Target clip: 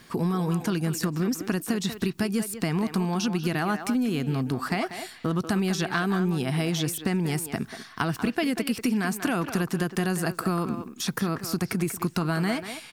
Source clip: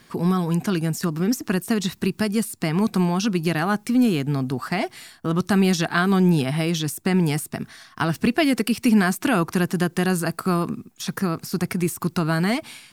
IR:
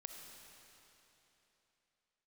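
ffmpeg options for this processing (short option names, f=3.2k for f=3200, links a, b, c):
-filter_complex "[0:a]acompressor=threshold=-24dB:ratio=6,asplit=2[a][b];[b]adelay=190,highpass=300,lowpass=3.4k,asoftclip=type=hard:threshold=-20.5dB,volume=-8dB[c];[a][c]amix=inputs=2:normalize=0,volume=1dB"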